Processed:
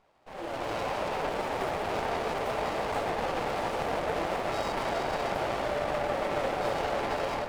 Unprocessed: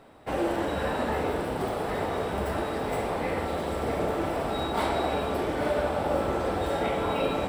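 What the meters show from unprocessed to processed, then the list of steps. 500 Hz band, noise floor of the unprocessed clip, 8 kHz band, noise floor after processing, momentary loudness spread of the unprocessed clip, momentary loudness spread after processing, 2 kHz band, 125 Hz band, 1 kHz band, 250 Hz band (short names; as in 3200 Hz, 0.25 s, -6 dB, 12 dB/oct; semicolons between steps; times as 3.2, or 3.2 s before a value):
-3.0 dB, -32 dBFS, -1.0 dB, -40 dBFS, 3 LU, 2 LU, 0.0 dB, -7.0 dB, -0.5 dB, -7.5 dB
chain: HPF 760 Hz 12 dB/oct; high shelf 8300 Hz -10 dB; limiter -28.5 dBFS, peak gain reduction 9.5 dB; AGC gain up to 14.5 dB; flange 0.68 Hz, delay 0.8 ms, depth 8.8 ms, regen +66%; on a send: darkening echo 0.278 s, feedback 73%, low-pass 1500 Hz, level -5 dB; on the sum: running maximum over 17 samples; gain -3.5 dB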